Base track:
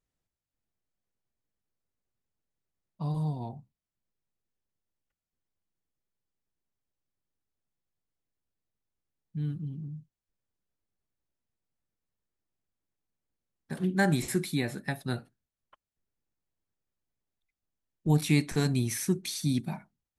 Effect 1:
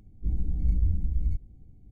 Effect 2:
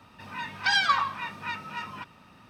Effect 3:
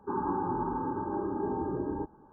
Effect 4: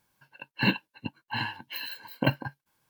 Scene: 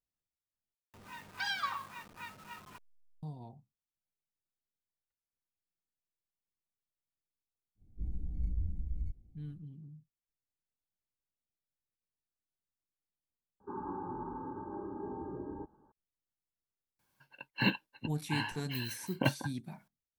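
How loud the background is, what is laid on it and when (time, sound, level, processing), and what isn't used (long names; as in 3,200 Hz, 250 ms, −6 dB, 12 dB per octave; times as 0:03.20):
base track −11.5 dB
0:00.74: overwrite with 2 −12.5 dB + hold until the input has moved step −38 dBFS
0:07.75: mix in 1 −10.5 dB, fades 0.10 s
0:13.60: overwrite with 3 −9 dB + high-frequency loss of the air 180 metres
0:16.99: mix in 4 −5 dB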